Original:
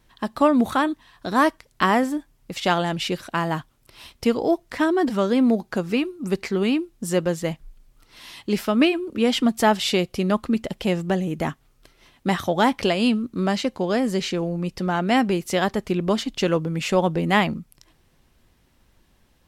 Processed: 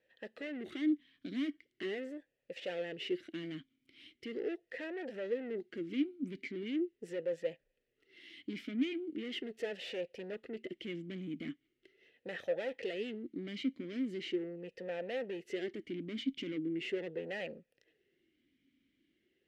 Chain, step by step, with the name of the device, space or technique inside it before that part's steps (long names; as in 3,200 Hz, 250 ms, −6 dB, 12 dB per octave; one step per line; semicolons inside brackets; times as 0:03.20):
talk box (tube saturation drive 26 dB, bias 0.5; formant filter swept between two vowels e-i 0.4 Hz)
level +2 dB